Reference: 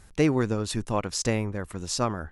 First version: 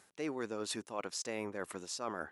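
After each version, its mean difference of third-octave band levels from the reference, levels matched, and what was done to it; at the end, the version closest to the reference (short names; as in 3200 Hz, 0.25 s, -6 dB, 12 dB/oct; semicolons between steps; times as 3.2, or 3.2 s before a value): 5.5 dB: HPF 330 Hz 12 dB/oct; reverse; compressor 10:1, threshold -35 dBFS, peak gain reduction 16 dB; reverse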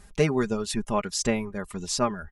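3.5 dB: reverb removal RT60 0.51 s; comb 4.9 ms, depth 64%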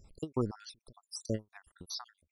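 15.0 dB: random spectral dropouts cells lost 72%; ending taper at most 370 dB/s; gain -5.5 dB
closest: second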